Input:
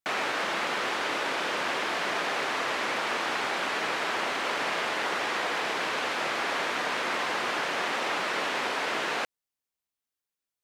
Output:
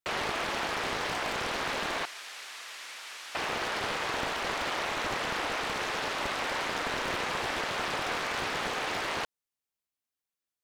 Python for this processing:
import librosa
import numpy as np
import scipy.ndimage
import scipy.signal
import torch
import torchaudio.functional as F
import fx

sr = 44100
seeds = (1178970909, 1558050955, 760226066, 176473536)

y = fx.differentiator(x, sr, at=(2.05, 3.35))
y = fx.doppler_dist(y, sr, depth_ms=0.89)
y = y * librosa.db_to_amplitude(-2.5)